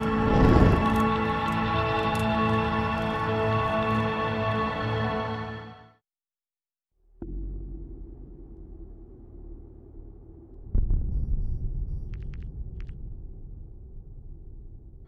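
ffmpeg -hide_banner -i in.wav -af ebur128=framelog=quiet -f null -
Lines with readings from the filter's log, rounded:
Integrated loudness:
  I:         -26.0 LUFS
  Threshold: -38.7 LUFS
Loudness range:
  LRA:        19.4 LU
  Threshold: -50.2 LUFS
  LRA low:   -44.1 LUFS
  LRA high:  -24.7 LUFS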